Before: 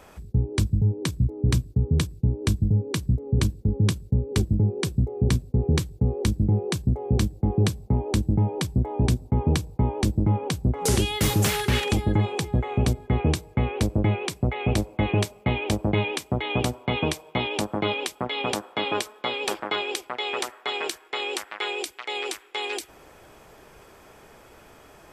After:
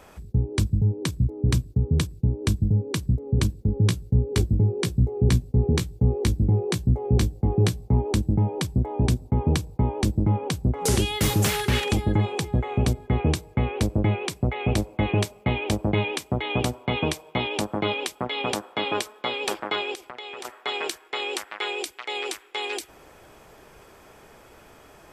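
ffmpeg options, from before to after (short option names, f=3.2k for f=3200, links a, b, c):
-filter_complex "[0:a]asettb=1/sr,asplit=3[a][b][c];[a]atrim=end=3.754[d];[b]atrim=start=3.75:end=8.13,asetpts=PTS-STARTPTS,afade=t=in:d=0.004:c=qsin,afade=t=out:st=4.376:d=0.004:c=qsin,asplit=2[e][f];[f]adelay=17,volume=-7dB[g];[e][g]amix=inputs=2:normalize=0,atrim=end_sample=193158[h];[c]atrim=start=8.126[i];[d][h]acrossfade=d=0.004:c1=hsin:c2=qsin[j];[j][i]acrossfade=d=0.004:c1=qsin:c2=hsin,asettb=1/sr,asplit=3[k][l][m];[k]atrim=end=19.944[n];[l]atrim=start=19.94:end=20.45,asetpts=PTS-STARTPTS,afade=t=in:d=0.004:c=qsin,afade=t=out:st=0.506:d=0.004:c=qsin,acompressor=threshold=-34dB:ratio=6:attack=3.2:release=140:knee=1:detection=peak[o];[m]atrim=start=20.446[p];[n][o]acrossfade=d=0.004:c1=hsin:c2=qsin[q];[q][p]acrossfade=d=0.004:c1=qsin:c2=hsin"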